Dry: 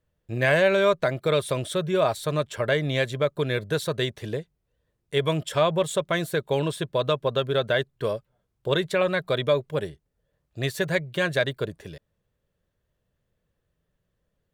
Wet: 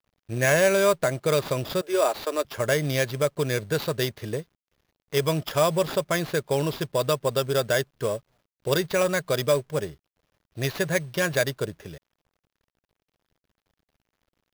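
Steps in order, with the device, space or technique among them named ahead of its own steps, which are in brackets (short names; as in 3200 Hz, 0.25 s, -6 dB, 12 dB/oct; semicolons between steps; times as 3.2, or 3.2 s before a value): 1.81–2.45 steep high-pass 270 Hz 48 dB/oct; early companding sampler (sample-rate reducer 8400 Hz, jitter 0%; companded quantiser 6-bit)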